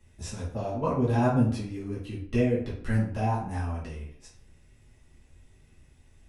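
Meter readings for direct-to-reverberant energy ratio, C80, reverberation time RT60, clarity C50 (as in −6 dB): −7.0 dB, 9.5 dB, 0.55 s, 5.0 dB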